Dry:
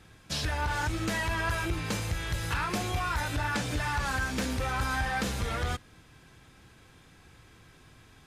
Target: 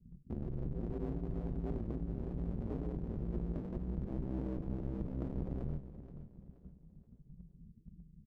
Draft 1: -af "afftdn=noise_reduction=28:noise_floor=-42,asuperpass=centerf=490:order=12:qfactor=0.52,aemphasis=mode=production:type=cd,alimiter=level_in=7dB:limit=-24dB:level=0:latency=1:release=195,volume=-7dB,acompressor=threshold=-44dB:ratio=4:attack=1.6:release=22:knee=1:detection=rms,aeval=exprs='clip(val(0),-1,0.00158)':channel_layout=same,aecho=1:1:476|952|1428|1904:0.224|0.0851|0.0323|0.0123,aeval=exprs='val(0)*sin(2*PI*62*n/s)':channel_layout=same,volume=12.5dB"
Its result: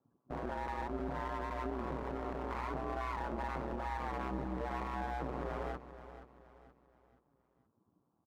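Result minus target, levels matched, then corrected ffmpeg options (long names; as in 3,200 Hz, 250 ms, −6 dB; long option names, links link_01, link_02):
125 Hz band −7.0 dB
-af "afftdn=noise_reduction=28:noise_floor=-42,asuperpass=centerf=170:order=12:qfactor=0.52,aemphasis=mode=production:type=cd,alimiter=level_in=7dB:limit=-24dB:level=0:latency=1:release=195,volume=-7dB,acompressor=threshold=-44dB:ratio=4:attack=1.6:release=22:knee=1:detection=rms,aeval=exprs='clip(val(0),-1,0.00158)':channel_layout=same,aecho=1:1:476|952|1428|1904:0.224|0.0851|0.0323|0.0123,aeval=exprs='val(0)*sin(2*PI*62*n/s)':channel_layout=same,volume=12.5dB"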